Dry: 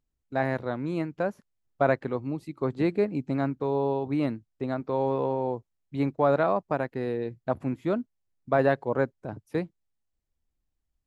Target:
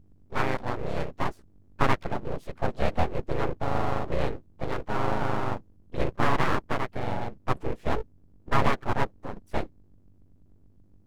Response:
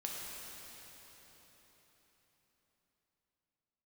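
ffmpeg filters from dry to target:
-filter_complex "[0:a]aeval=exprs='val(0)+0.00158*(sin(2*PI*50*n/s)+sin(2*PI*2*50*n/s)/2+sin(2*PI*3*50*n/s)/3+sin(2*PI*4*50*n/s)/4+sin(2*PI*5*50*n/s)/5)':channel_layout=same,asplit=3[link_01][link_02][link_03];[link_02]asetrate=35002,aresample=44100,atempo=1.25992,volume=-1dB[link_04];[link_03]asetrate=58866,aresample=44100,atempo=0.749154,volume=-17dB[link_05];[link_01][link_04][link_05]amix=inputs=3:normalize=0,aeval=exprs='abs(val(0))':channel_layout=same"

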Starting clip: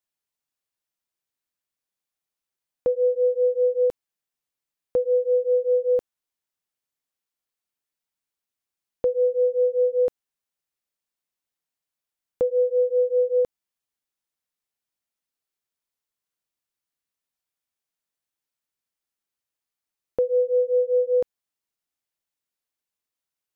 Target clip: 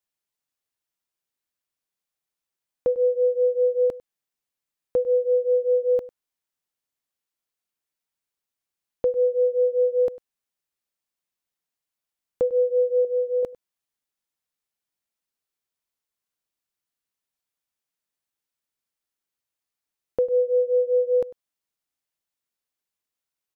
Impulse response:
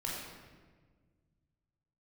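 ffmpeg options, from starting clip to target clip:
-filter_complex "[0:a]asettb=1/sr,asplit=3[link_01][link_02][link_03];[link_01]atrim=end=13.034[link_04];[link_02]atrim=start=13.03:end=13.43,asetpts=PTS-STARTPTS,afade=type=in:duration=0.004:curve=qsin,afade=type=out:start_time=0.396:duration=0.004:curve=qsin,asplit=2[link_05][link_06];[link_06]adelay=17,volume=-9dB[link_07];[link_05][link_07]amix=inputs=2:normalize=0,atrim=end_sample=17640[link_08];[link_03]atrim=start=13.426[link_09];[link_04][link_08]acrossfade=duration=0.004:curve1=hsin:curve2=qsin[link_10];[link_10][link_09]acrossfade=duration=0.004:curve1=qsin:curve2=hsin,asplit=2[link_11][link_12];[link_12]adelay=99.13,volume=-19dB,highshelf=frequency=4000:gain=-2.23[link_13];[link_11][link_13]amix=inputs=2:normalize=0"

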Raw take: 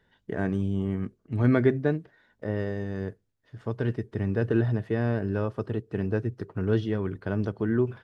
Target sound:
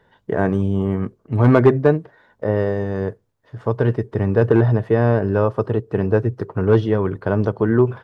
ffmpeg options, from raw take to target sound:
ffmpeg -i in.wav -af "asoftclip=type=hard:threshold=-15dB,equalizer=frequency=125:width_type=o:width=1:gain=5,equalizer=frequency=500:width_type=o:width=1:gain=7,equalizer=frequency=1000:width_type=o:width=1:gain=9,volume=4.5dB" out.wav

